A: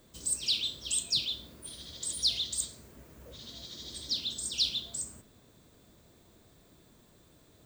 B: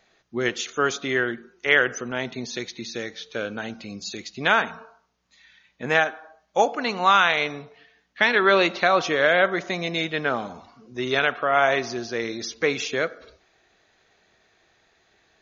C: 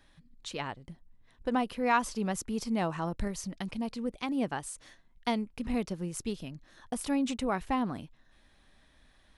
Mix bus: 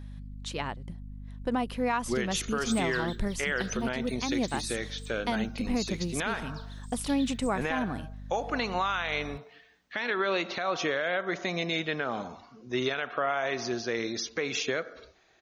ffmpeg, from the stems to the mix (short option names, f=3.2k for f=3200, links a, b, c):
-filter_complex "[0:a]asoftclip=type=hard:threshold=-21dB,adelay=2450,volume=-11dB[a];[1:a]acompressor=threshold=-20dB:ratio=6,adelay=1750,volume=-1.5dB[b];[2:a]aeval=exprs='val(0)+0.00708*(sin(2*PI*50*n/s)+sin(2*PI*2*50*n/s)/2+sin(2*PI*3*50*n/s)/3+sin(2*PI*4*50*n/s)/4+sin(2*PI*5*50*n/s)/5)':c=same,volume=2.5dB,asplit=2[c][d];[d]apad=whole_len=450045[e];[a][e]sidechaingate=range=-10dB:threshold=-32dB:ratio=16:detection=peak[f];[f][b][c]amix=inputs=3:normalize=0,alimiter=limit=-18dB:level=0:latency=1:release=162"